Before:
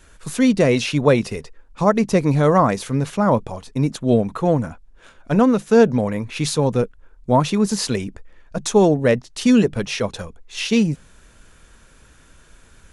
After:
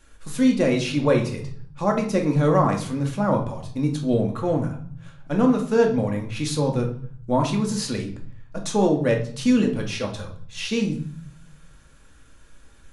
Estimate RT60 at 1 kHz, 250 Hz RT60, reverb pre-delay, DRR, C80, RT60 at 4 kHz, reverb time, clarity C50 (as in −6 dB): 0.55 s, 1.0 s, 4 ms, 1.5 dB, 13.5 dB, 0.50 s, 0.55 s, 9.0 dB